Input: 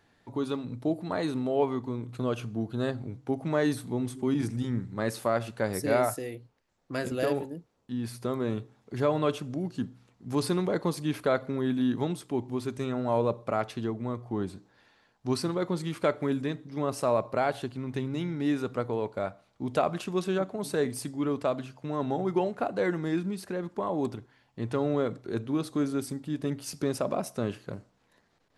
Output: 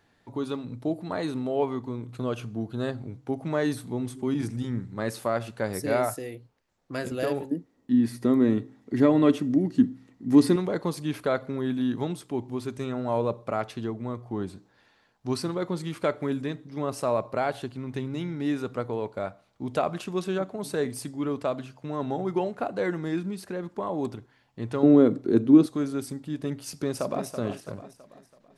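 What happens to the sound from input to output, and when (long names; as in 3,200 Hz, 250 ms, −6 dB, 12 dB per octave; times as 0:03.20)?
0:07.51–0:10.56: hollow resonant body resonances 270/1,900 Hz, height 15 dB, ringing for 35 ms
0:24.83–0:25.66: parametric band 280 Hz +15 dB 1.4 octaves
0:26.61–0:27.27: delay throw 330 ms, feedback 45%, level −9 dB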